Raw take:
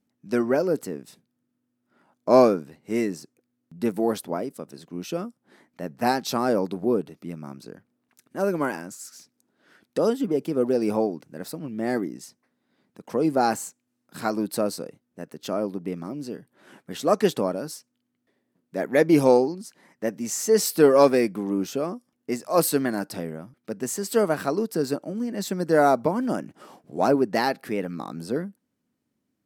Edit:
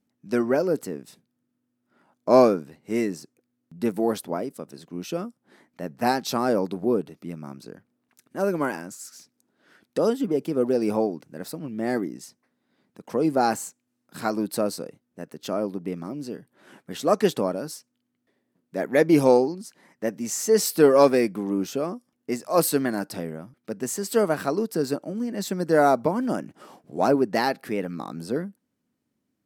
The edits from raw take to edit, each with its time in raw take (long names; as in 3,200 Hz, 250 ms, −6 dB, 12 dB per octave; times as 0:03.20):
nothing was edited